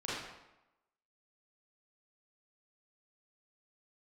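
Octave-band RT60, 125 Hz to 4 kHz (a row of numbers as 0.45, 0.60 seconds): 0.85, 0.90, 0.95, 0.95, 0.85, 0.70 seconds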